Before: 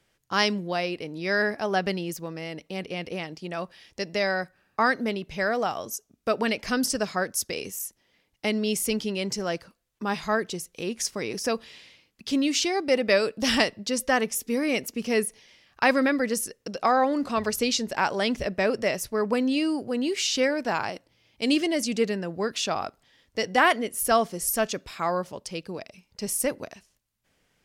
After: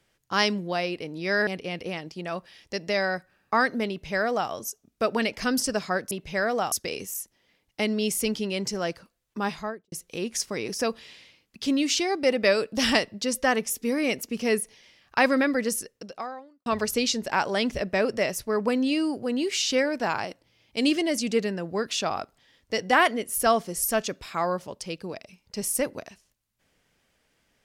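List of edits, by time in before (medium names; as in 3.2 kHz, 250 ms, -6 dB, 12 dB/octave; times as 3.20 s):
1.47–2.73 s: delete
5.15–5.76 s: copy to 7.37 s
10.07–10.57 s: studio fade out
16.44–17.31 s: fade out quadratic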